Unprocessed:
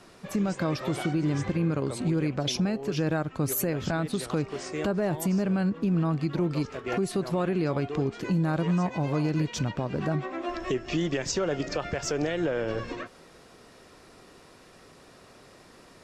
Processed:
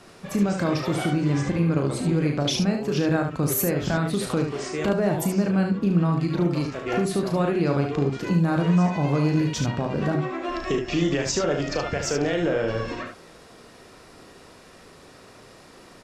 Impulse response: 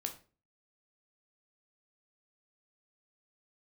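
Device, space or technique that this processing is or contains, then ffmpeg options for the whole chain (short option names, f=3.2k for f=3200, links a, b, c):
slapback doubling: -filter_complex "[0:a]asplit=3[a][b][c];[b]adelay=35,volume=-7dB[d];[c]adelay=73,volume=-6dB[e];[a][d][e]amix=inputs=3:normalize=0,volume=3dB"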